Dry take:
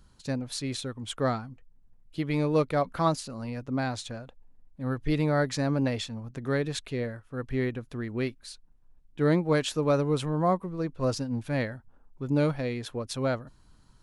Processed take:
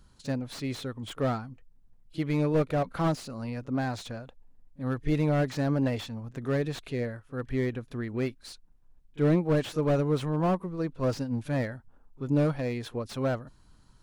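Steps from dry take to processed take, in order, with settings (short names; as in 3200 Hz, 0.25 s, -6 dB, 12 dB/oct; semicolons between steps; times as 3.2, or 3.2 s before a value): pre-echo 34 ms -22.5 dB; slew limiter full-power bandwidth 46 Hz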